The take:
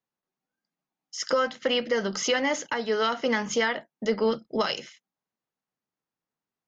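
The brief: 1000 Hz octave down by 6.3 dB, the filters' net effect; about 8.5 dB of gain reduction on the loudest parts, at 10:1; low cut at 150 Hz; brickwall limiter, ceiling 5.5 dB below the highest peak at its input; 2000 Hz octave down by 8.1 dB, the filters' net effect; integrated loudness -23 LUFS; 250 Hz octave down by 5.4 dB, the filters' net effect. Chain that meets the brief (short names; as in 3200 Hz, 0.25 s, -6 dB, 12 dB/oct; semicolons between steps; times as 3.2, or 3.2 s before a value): HPF 150 Hz; bell 250 Hz -5 dB; bell 1000 Hz -5.5 dB; bell 2000 Hz -8 dB; compressor 10:1, threshold -31 dBFS; gain +14.5 dB; limiter -12.5 dBFS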